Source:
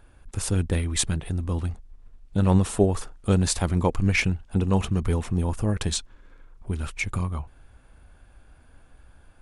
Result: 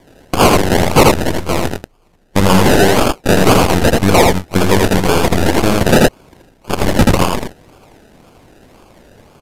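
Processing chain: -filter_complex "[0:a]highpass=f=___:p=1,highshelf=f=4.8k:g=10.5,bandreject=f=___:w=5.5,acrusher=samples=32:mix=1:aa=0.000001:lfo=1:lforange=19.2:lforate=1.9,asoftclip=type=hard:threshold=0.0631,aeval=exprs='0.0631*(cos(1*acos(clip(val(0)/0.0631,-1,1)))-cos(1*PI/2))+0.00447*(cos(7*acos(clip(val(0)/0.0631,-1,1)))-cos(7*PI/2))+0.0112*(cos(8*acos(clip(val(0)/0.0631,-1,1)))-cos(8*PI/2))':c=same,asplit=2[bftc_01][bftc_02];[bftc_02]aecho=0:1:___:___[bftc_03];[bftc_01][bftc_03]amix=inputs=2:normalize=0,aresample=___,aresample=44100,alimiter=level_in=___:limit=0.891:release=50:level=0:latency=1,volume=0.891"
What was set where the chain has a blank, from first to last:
930, 4.4k, 81, 0.668, 32000, 15.8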